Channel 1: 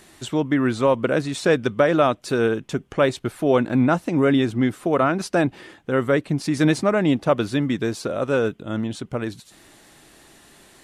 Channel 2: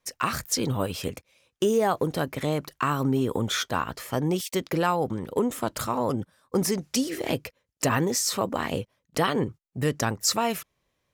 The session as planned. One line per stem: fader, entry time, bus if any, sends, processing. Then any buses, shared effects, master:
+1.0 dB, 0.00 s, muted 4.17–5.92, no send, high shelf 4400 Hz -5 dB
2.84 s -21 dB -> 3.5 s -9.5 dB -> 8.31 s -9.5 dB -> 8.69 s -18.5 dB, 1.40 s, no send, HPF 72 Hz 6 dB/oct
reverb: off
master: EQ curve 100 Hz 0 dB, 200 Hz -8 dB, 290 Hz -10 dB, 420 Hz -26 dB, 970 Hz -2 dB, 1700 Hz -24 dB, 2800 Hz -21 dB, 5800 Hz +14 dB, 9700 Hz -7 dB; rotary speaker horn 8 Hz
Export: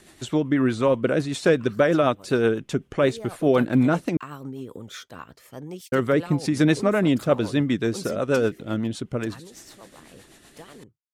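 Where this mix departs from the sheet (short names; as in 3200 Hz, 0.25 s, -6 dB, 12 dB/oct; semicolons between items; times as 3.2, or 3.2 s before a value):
stem 1: missing high shelf 4400 Hz -5 dB; master: missing EQ curve 100 Hz 0 dB, 200 Hz -8 dB, 290 Hz -10 dB, 420 Hz -26 dB, 970 Hz -2 dB, 1700 Hz -24 dB, 2800 Hz -21 dB, 5800 Hz +14 dB, 9700 Hz -7 dB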